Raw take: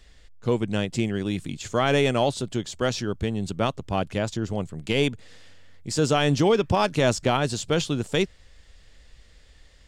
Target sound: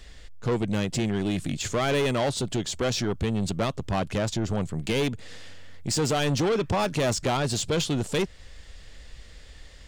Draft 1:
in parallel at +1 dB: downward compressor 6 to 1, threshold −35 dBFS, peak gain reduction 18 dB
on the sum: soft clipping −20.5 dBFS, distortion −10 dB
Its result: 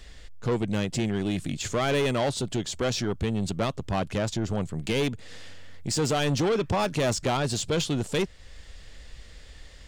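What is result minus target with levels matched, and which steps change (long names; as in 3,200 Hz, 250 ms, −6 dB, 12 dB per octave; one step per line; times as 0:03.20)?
downward compressor: peak gain reduction +6 dB
change: downward compressor 6 to 1, threshold −28 dBFS, peak gain reduction 12 dB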